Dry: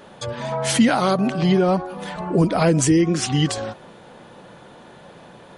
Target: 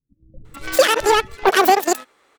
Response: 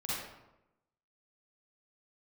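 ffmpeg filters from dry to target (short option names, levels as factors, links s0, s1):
-filter_complex "[0:a]aeval=exprs='0.531*(cos(1*acos(clip(val(0)/0.531,-1,1)))-cos(1*PI/2))+0.0668*(cos(7*acos(clip(val(0)/0.531,-1,1)))-cos(7*PI/2))':c=same,asetrate=103194,aresample=44100,acrossover=split=160[s0][s1];[s1]adelay=450[s2];[s0][s2]amix=inputs=2:normalize=0,volume=1.5"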